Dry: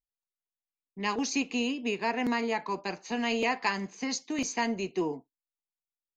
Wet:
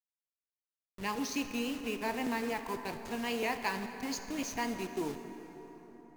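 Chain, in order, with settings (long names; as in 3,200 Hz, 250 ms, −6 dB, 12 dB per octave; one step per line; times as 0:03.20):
hold until the input has moved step −35 dBFS
pitch vibrato 3.7 Hz 58 cents
dense smooth reverb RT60 4.5 s, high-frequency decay 0.55×, DRR 7 dB
level −5.5 dB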